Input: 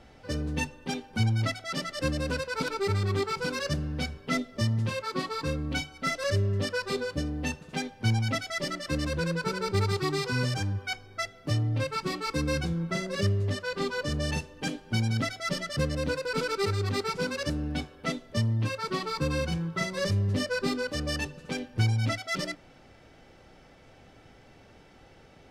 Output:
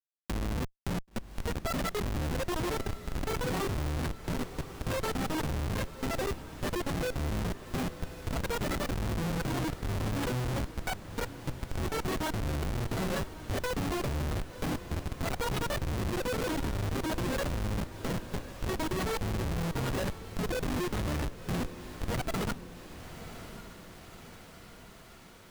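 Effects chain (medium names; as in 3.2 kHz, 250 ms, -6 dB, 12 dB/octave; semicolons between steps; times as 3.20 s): pitch shift switched off and on -6 st, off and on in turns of 270 ms; elliptic low-pass 4.4 kHz, stop band 70 dB; treble shelf 3.2 kHz +2 dB; in parallel at -2 dB: peak limiter -26.5 dBFS, peak gain reduction 9.5 dB; on the sum: compressor with a negative ratio -30 dBFS, ratio -1; Schmitt trigger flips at -27 dBFS; echo that smears into a reverb 1058 ms, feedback 54%, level -13 dB; tape noise reduction on one side only encoder only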